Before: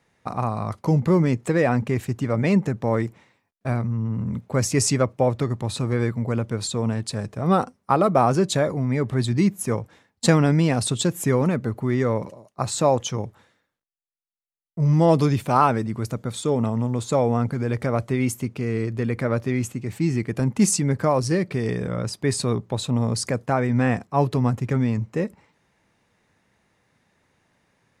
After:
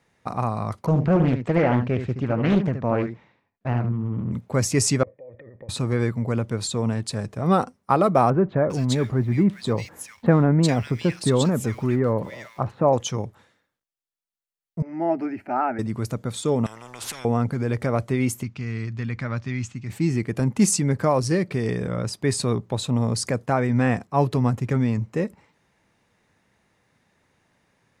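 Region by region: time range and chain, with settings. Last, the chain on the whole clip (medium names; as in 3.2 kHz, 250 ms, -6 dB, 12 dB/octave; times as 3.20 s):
0.86–4.32 s: distance through air 190 m + delay 74 ms -8.5 dB + loudspeaker Doppler distortion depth 0.69 ms
5.03–5.69 s: band-stop 2.6 kHz, Q 10 + compressor with a negative ratio -30 dBFS + cascade formant filter e
8.30–12.93 s: companding laws mixed up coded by mu + treble shelf 6.3 kHz -10 dB + bands offset in time lows, highs 400 ms, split 1.9 kHz
14.82–15.79 s: high-pass 290 Hz 6 dB/octave + distance through air 370 m + static phaser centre 720 Hz, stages 8
16.66–17.25 s: tone controls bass +14 dB, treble 0 dB + compression 20:1, threshold -24 dBFS + spectrum-flattening compressor 10:1
18.43–19.90 s: low-pass 6.6 kHz 24 dB/octave + peaking EQ 450 Hz -14 dB 1.5 oct
whole clip: none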